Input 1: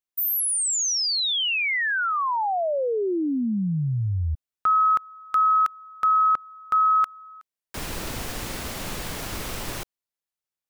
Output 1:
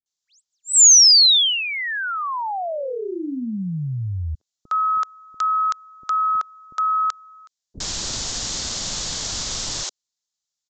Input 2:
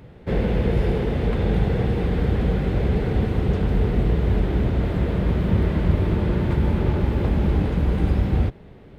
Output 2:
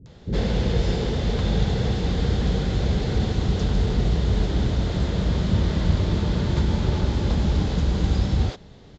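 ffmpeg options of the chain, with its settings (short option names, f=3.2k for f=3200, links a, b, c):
-filter_complex "[0:a]aexciter=amount=7:drive=2.4:freq=3.5k,acrossover=split=370[a][b];[b]adelay=60[c];[a][c]amix=inputs=2:normalize=0,aresample=16000,aresample=44100,volume=-1dB"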